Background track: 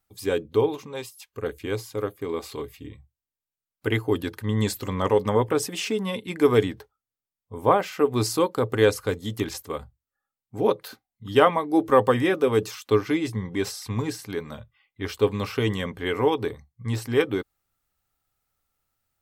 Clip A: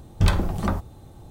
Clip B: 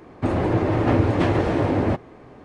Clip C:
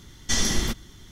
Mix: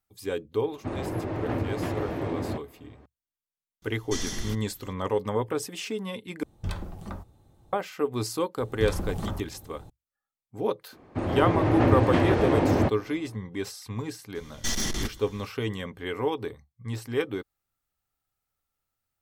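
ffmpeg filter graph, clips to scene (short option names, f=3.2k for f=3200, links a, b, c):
-filter_complex "[2:a]asplit=2[a][b];[3:a]asplit=2[c][d];[1:a]asplit=2[e][f];[0:a]volume=-6dB[g];[f]alimiter=limit=-16.5dB:level=0:latency=1:release=176[h];[b]dynaudnorm=f=130:g=7:m=11.5dB[i];[d]aeval=exprs='(tanh(12.6*val(0)+0.3)-tanh(0.3))/12.6':c=same[j];[g]asplit=2[k][l];[k]atrim=end=6.434[m];[e]atrim=end=1.3,asetpts=PTS-STARTPTS,volume=-13.5dB[n];[l]atrim=start=7.726[o];[a]atrim=end=2.44,asetpts=PTS-STARTPTS,volume=-10.5dB,afade=t=in:d=0.004:c=hsin,afade=t=out:st=2.436:d=0.004:c=hsin,adelay=620[p];[c]atrim=end=1.11,asetpts=PTS-STARTPTS,volume=-9.5dB,afade=t=in:d=0.004:c=hsin,afade=t=out:st=1.106:d=0.004:c=hsin,adelay=3820[q];[h]atrim=end=1.3,asetpts=PTS-STARTPTS,volume=-4dB,afade=t=in:d=0.004:c=hsin,afade=t=out:st=1.296:d=0.004:c=hsin,adelay=8600[r];[i]atrim=end=2.44,asetpts=PTS-STARTPTS,volume=-8.5dB,afade=t=in:d=0.004:c=hsin,afade=t=out:st=2.436:d=0.004:c=hsin,adelay=10930[s];[j]atrim=end=1.11,asetpts=PTS-STARTPTS,volume=-1dB,afade=t=in:d=0.004:c=hsin,afade=t=out:st=1.106:d=0.004:c=hsin,adelay=14350[t];[m][n]acrossfade=d=0.004:c1=hsin:c2=hsin[u];[u][o]acrossfade=d=0.004:c1=hsin:c2=hsin[v];[v][p][q][r][s][t]amix=inputs=6:normalize=0"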